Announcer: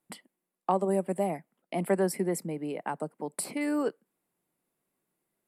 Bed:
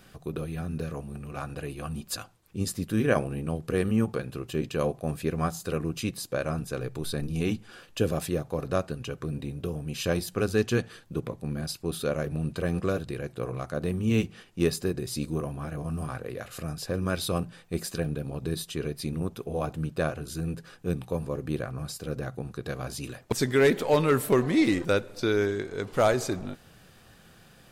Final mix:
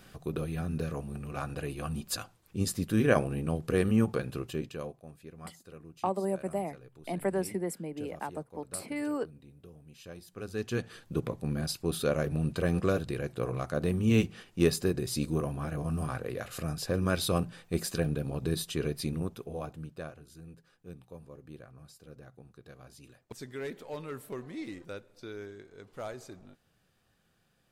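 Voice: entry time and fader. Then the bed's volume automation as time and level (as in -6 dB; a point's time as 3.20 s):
5.35 s, -4.0 dB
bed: 4.40 s -0.5 dB
5.11 s -19.5 dB
10.18 s -19.5 dB
11.04 s 0 dB
18.99 s 0 dB
20.33 s -17.5 dB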